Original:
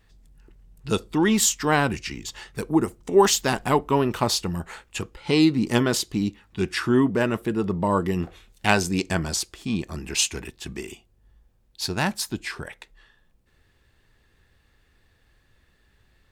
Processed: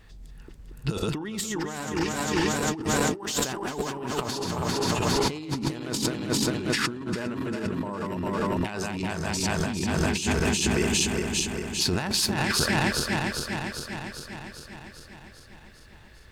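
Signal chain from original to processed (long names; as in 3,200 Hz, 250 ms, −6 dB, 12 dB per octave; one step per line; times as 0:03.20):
feedback delay that plays each chunk backwards 200 ms, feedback 79%, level −5 dB
high-shelf EQ 7,100 Hz −3.5 dB
compressor whose output falls as the input rises −30 dBFS, ratio −1
level +1.5 dB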